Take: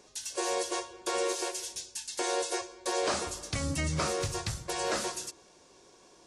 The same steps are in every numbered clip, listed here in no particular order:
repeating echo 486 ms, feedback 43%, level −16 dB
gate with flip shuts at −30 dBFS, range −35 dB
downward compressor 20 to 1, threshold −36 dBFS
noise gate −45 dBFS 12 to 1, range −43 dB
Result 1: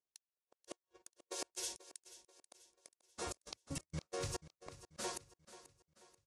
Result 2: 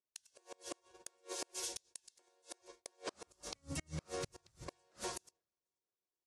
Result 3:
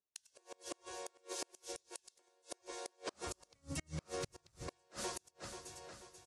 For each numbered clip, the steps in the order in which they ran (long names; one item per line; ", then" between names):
downward compressor, then gate with flip, then noise gate, then repeating echo
downward compressor, then repeating echo, then noise gate, then gate with flip
noise gate, then repeating echo, then downward compressor, then gate with flip